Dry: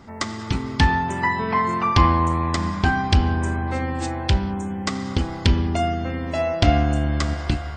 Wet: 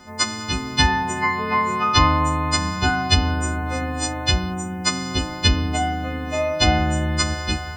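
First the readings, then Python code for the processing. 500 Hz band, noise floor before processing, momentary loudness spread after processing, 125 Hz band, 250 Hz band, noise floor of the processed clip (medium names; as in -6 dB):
-0.5 dB, -32 dBFS, 7 LU, -1.5 dB, -1.0 dB, -31 dBFS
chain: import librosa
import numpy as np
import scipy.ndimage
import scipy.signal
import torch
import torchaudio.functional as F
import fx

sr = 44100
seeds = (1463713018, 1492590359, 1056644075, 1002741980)

y = fx.freq_snap(x, sr, grid_st=3)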